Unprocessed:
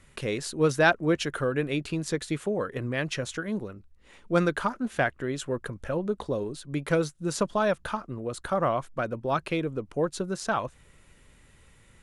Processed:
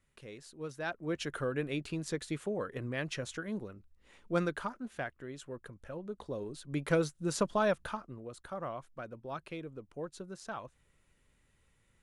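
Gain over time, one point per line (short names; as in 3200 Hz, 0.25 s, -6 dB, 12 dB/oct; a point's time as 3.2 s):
0.79 s -18.5 dB
1.28 s -7 dB
4.32 s -7 dB
5.07 s -13.5 dB
6.02 s -13.5 dB
6.8 s -4 dB
7.69 s -4 dB
8.4 s -14 dB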